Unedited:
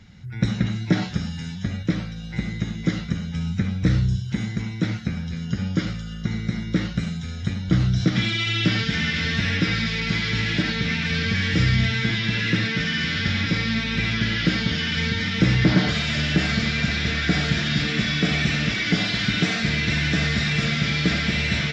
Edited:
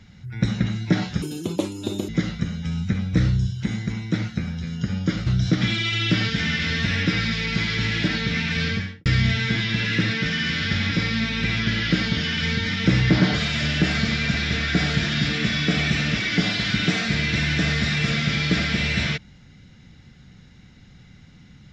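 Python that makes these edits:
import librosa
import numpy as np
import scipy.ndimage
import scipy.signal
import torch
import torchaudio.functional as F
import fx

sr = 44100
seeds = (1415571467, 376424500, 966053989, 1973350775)

y = fx.studio_fade_out(x, sr, start_s=11.2, length_s=0.4)
y = fx.edit(y, sr, fx.speed_span(start_s=1.22, length_s=1.56, speed=1.8),
    fx.cut(start_s=5.96, length_s=1.85), tone=tone)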